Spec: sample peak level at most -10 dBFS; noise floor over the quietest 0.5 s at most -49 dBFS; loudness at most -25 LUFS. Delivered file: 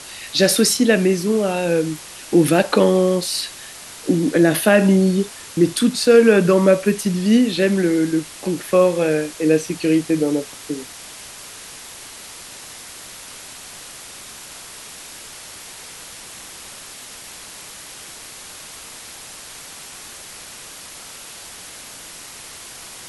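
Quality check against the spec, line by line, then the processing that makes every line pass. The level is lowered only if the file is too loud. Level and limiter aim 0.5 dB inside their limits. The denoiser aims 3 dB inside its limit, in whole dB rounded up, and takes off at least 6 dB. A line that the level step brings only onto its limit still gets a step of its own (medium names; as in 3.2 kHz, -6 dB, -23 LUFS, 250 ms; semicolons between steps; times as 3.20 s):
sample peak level -2.0 dBFS: fail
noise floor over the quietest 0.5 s -38 dBFS: fail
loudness -17.5 LUFS: fail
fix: noise reduction 6 dB, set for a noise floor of -38 dBFS; trim -8 dB; peak limiter -10.5 dBFS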